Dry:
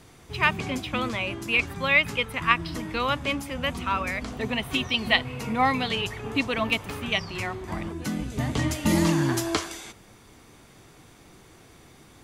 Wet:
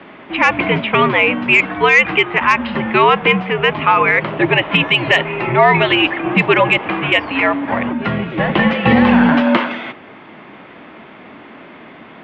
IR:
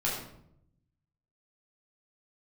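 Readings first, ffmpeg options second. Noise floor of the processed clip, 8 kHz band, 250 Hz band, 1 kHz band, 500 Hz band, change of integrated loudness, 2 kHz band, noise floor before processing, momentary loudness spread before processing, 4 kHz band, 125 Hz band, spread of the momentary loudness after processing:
-39 dBFS, no reading, +12.0 dB, +13.5 dB, +15.0 dB, +12.0 dB, +13.0 dB, -53 dBFS, 10 LU, +9.0 dB, +8.0 dB, 8 LU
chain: -af "highpass=f=300:t=q:w=0.5412,highpass=f=300:t=q:w=1.307,lowpass=f=3000:t=q:w=0.5176,lowpass=f=3000:t=q:w=0.7071,lowpass=f=3000:t=q:w=1.932,afreqshift=-93,acontrast=83,alimiter=level_in=3.76:limit=0.891:release=50:level=0:latency=1,volume=0.891"

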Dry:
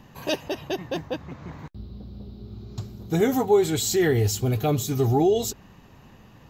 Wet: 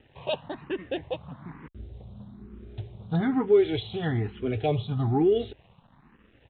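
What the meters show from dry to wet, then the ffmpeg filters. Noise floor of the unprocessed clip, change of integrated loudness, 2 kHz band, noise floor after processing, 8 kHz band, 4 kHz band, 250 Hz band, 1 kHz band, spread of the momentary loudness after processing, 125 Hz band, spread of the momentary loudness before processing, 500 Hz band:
-51 dBFS, -3.5 dB, -5.5 dB, -61 dBFS, under -40 dB, -6.5 dB, -2.5 dB, -5.0 dB, 23 LU, -4.0 dB, 20 LU, -2.5 dB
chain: -filter_complex "[0:a]aresample=8000,aeval=exprs='sgn(val(0))*max(abs(val(0))-0.00211,0)':c=same,aresample=44100,asplit=2[s0][s1];[s1]afreqshift=1.1[s2];[s0][s2]amix=inputs=2:normalize=1"

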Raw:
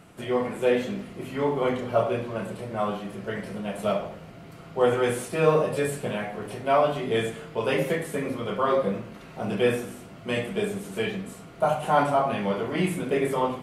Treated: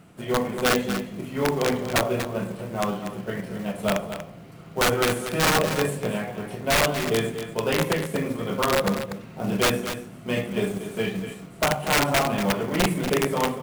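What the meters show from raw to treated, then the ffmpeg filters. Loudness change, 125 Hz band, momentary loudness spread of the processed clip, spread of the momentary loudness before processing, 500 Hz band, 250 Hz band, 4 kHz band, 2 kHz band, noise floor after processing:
+2.0 dB, +3.5 dB, 11 LU, 12 LU, -1.0 dB, +3.0 dB, +9.5 dB, +6.0 dB, -43 dBFS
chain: -af "equalizer=f=170:t=o:w=1.5:g=5,aeval=exprs='(mod(5.01*val(0)+1,2)-1)/5.01':c=same,acrusher=bits=6:mode=log:mix=0:aa=0.000001,aeval=exprs='0.188*(cos(1*acos(clip(val(0)/0.188,-1,1)))-cos(1*PI/2))+0.00668*(cos(7*acos(clip(val(0)/0.188,-1,1)))-cos(7*PI/2))':c=same,aecho=1:1:239:0.316"

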